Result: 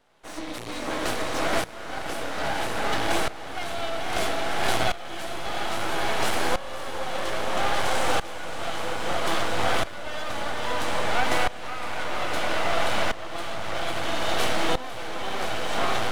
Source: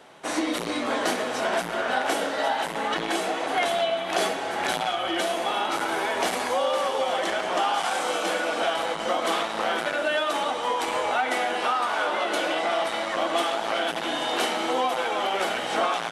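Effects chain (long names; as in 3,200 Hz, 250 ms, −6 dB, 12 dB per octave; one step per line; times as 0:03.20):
half-wave rectification
feedback delay with all-pass diffusion 525 ms, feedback 71%, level −4.5 dB
shaped tremolo saw up 0.61 Hz, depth 85%
level +4 dB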